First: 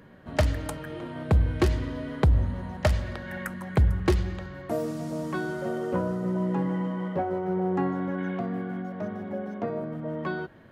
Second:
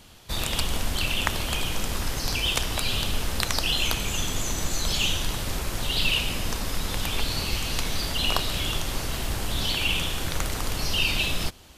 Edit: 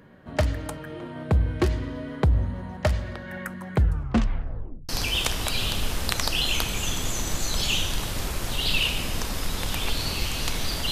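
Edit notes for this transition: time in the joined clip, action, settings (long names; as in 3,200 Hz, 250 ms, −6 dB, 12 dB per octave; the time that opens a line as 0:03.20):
first
0:03.76: tape stop 1.13 s
0:04.89: continue with second from 0:02.20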